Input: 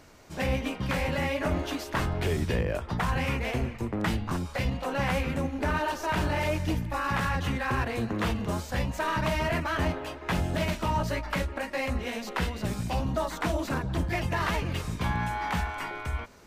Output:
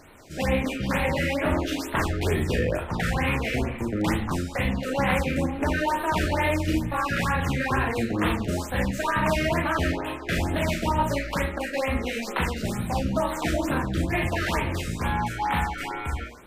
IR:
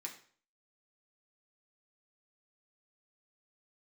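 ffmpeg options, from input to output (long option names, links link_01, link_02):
-filter_complex "[0:a]bandreject=frequency=60:width_type=h:width=6,bandreject=frequency=120:width_type=h:width=6,bandreject=frequency=180:width_type=h:width=6,asplit=2[link_01][link_02];[1:a]atrim=start_sample=2205,adelay=36[link_03];[link_02][link_03]afir=irnorm=-1:irlink=0,volume=1dB[link_04];[link_01][link_04]amix=inputs=2:normalize=0,afftfilt=real='re*(1-between(b*sr/1024,860*pow(6200/860,0.5+0.5*sin(2*PI*2.2*pts/sr))/1.41,860*pow(6200/860,0.5+0.5*sin(2*PI*2.2*pts/sr))*1.41))':imag='im*(1-between(b*sr/1024,860*pow(6200/860,0.5+0.5*sin(2*PI*2.2*pts/sr))/1.41,860*pow(6200/860,0.5+0.5*sin(2*PI*2.2*pts/sr))*1.41))':win_size=1024:overlap=0.75,volume=3dB"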